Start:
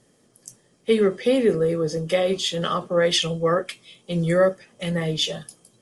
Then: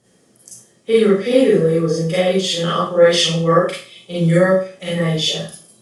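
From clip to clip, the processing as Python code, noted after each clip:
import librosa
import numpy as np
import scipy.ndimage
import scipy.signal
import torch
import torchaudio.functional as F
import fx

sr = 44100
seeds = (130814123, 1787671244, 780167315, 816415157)

y = scipy.signal.sosfilt(scipy.signal.butter(2, 40.0, 'highpass', fs=sr, output='sos'), x)
y = fx.rev_schroeder(y, sr, rt60_s=0.39, comb_ms=33, drr_db=-7.0)
y = F.gain(torch.from_numpy(y), -2.0).numpy()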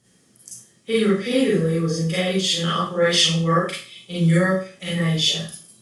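y = fx.peak_eq(x, sr, hz=560.0, db=-9.0, octaves=1.8)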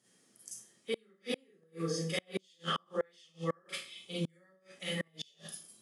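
y = fx.gate_flip(x, sr, shuts_db=-12.0, range_db=-36)
y = scipy.signal.sosfilt(scipy.signal.bessel(2, 270.0, 'highpass', norm='mag', fs=sr, output='sos'), y)
y = F.gain(torch.from_numpy(y), -8.0).numpy()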